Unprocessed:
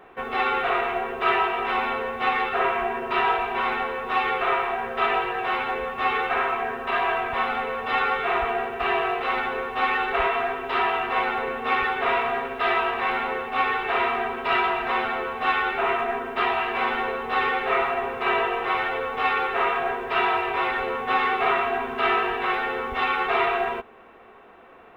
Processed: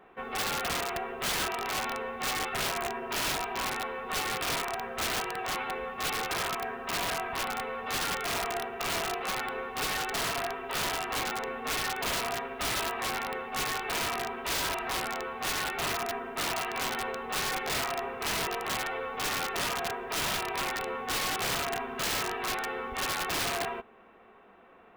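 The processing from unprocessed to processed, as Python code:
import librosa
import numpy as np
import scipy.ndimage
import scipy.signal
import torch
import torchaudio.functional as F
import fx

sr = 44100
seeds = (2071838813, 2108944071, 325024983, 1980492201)

y = fx.peak_eq(x, sr, hz=200.0, db=6.5, octaves=0.36)
y = (np.mod(10.0 ** (17.5 / 20.0) * y + 1.0, 2.0) - 1.0) / 10.0 ** (17.5 / 20.0)
y = y * librosa.db_to_amplitude(-7.5)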